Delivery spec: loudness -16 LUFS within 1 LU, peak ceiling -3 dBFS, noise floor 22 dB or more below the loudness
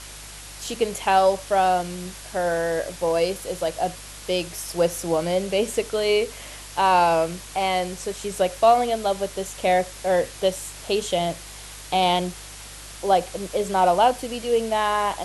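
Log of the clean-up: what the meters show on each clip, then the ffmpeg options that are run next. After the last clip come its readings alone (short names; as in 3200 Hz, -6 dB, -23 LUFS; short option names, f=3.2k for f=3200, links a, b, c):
hum 50 Hz; harmonics up to 150 Hz; hum level -43 dBFS; noise floor -40 dBFS; noise floor target -45 dBFS; loudness -23.0 LUFS; peak -6.5 dBFS; loudness target -16.0 LUFS
-> -af "bandreject=f=50:t=h:w=4,bandreject=f=100:t=h:w=4,bandreject=f=150:t=h:w=4"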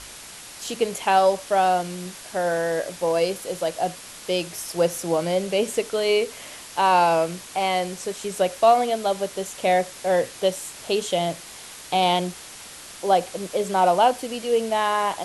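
hum none; noise floor -41 dBFS; noise floor target -45 dBFS
-> -af "afftdn=nr=6:nf=-41"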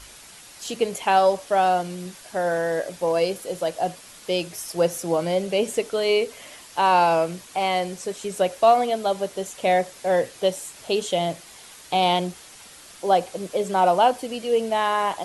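noise floor -46 dBFS; loudness -23.0 LUFS; peak -7.0 dBFS; loudness target -16.0 LUFS
-> -af "volume=7dB,alimiter=limit=-3dB:level=0:latency=1"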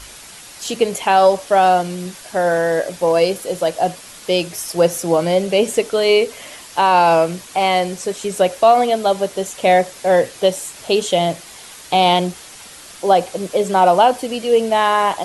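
loudness -16.5 LUFS; peak -3.0 dBFS; noise floor -39 dBFS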